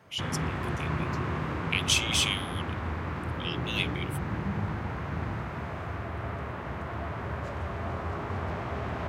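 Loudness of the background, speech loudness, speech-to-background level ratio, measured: −33.5 LKFS, −29.5 LKFS, 4.0 dB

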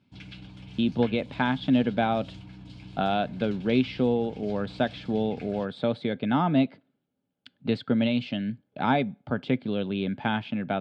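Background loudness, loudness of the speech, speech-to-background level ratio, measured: −45.5 LKFS, −27.5 LKFS, 18.0 dB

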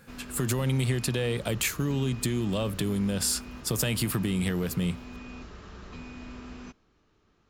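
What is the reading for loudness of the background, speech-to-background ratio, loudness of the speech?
−43.5 LKFS, 15.0 dB, −28.5 LKFS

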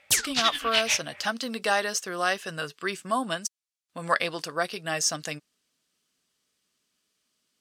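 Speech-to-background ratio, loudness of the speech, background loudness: −3.0 dB, −28.5 LKFS, −25.5 LKFS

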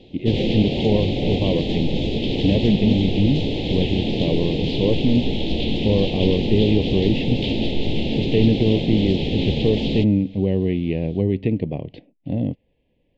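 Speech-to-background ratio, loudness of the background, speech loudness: 1.5 dB, −23.5 LKFS, −22.0 LKFS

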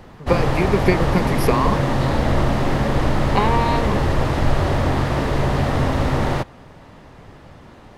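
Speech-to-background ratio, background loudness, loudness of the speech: −2.5 dB, −20.5 LKFS, −23.0 LKFS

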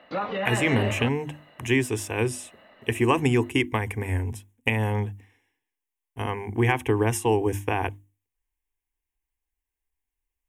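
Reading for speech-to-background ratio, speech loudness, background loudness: 4.0 dB, −26.0 LKFS, −30.0 LKFS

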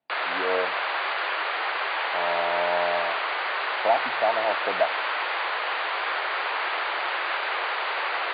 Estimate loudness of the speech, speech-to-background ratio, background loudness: −28.5 LKFS, −2.0 dB, −26.5 LKFS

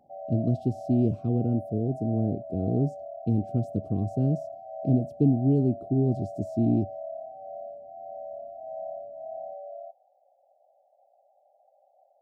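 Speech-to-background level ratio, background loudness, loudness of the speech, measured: 12.5 dB, −39.5 LKFS, −27.0 LKFS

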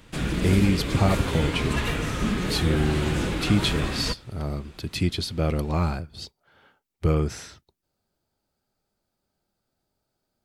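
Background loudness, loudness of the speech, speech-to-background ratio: −27.5 LKFS, −26.0 LKFS, 1.5 dB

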